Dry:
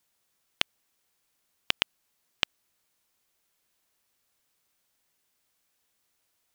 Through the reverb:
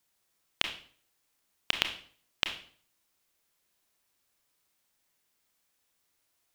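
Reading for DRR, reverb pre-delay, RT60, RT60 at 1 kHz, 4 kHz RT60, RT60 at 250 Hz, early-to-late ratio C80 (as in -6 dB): 5.0 dB, 27 ms, 0.50 s, 0.50 s, 0.45 s, 0.55 s, 13.0 dB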